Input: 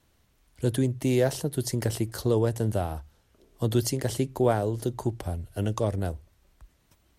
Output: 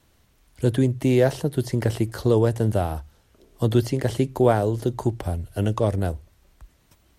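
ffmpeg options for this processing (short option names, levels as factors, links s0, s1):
-filter_complex "[0:a]acrossover=split=3500[s0][s1];[s1]acompressor=threshold=0.00562:ratio=4:attack=1:release=60[s2];[s0][s2]amix=inputs=2:normalize=0,volume=1.78"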